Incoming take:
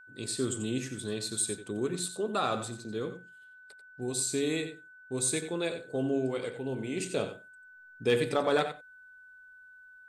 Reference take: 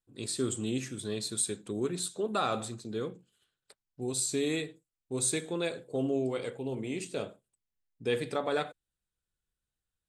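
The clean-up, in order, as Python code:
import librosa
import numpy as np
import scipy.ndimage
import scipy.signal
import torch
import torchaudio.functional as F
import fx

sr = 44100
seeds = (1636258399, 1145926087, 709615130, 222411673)

y = fx.fix_declip(x, sr, threshold_db=-16.5)
y = fx.notch(y, sr, hz=1500.0, q=30.0)
y = fx.fix_echo_inverse(y, sr, delay_ms=90, level_db=-11.0)
y = fx.gain(y, sr, db=fx.steps((0.0, 0.0), (6.97, -4.0)))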